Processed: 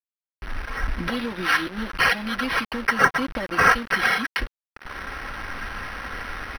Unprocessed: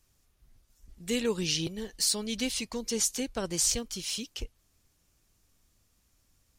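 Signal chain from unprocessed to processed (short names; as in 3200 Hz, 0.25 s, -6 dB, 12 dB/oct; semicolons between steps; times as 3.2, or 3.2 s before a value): recorder AGC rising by 51 dB/s; comb 3.5 ms, depth 92%; requantised 6-bit, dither none; synth low-pass 5800 Hz, resonance Q 7.3; decimation joined by straight lines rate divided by 6×; gain -2 dB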